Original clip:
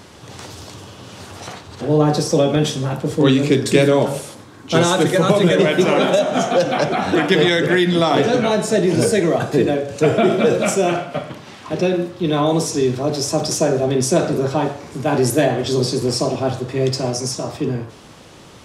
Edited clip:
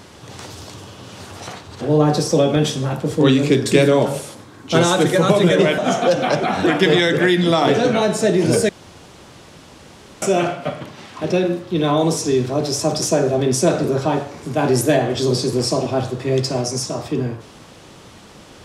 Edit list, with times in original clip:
5.78–6.27 cut
9.18–10.71 room tone

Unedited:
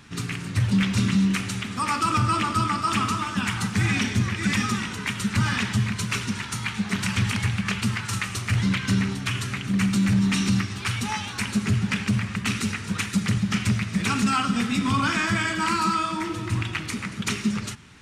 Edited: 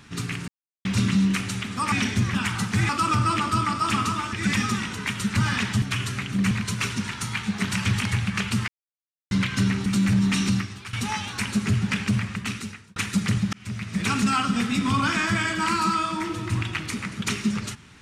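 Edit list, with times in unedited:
0.48–0.85 mute
1.92–3.36 swap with 3.91–4.33
7.99–8.62 mute
9.17–9.86 move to 5.82
10.46–10.93 fade out, to -15 dB
12.19–12.96 fade out
13.53–14.08 fade in

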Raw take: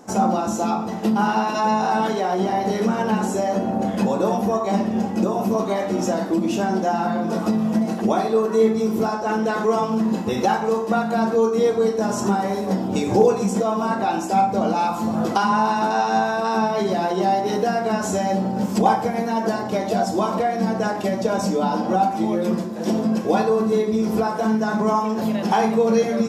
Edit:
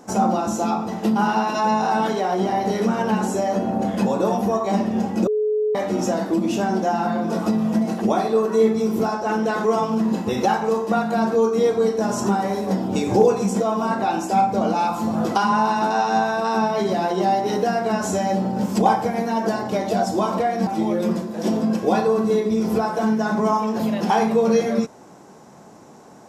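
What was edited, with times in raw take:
5.27–5.75 bleep 426 Hz -17.5 dBFS
20.67–22.09 cut

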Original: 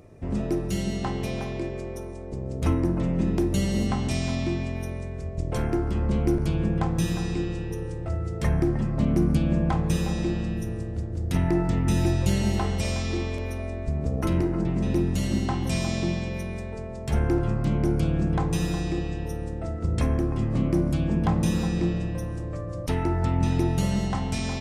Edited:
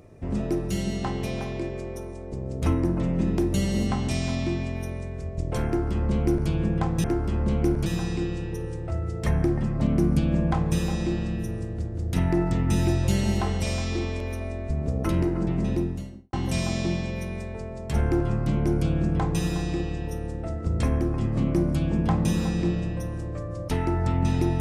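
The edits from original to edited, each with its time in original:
5.67–6.49 copy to 7.04
14.75–15.51 studio fade out

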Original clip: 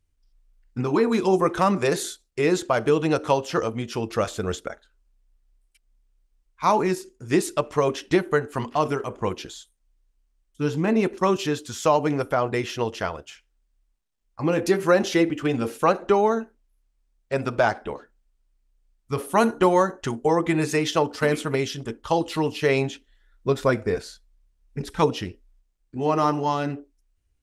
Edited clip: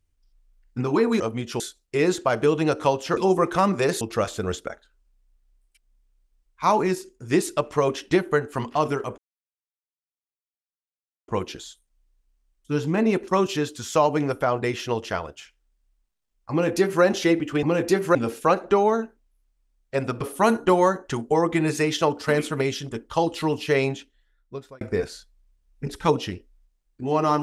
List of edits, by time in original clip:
1.2–2.04 swap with 3.61–4.01
9.18 insert silence 2.10 s
14.41–14.93 copy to 15.53
17.59–19.15 cut
22.65–23.75 fade out

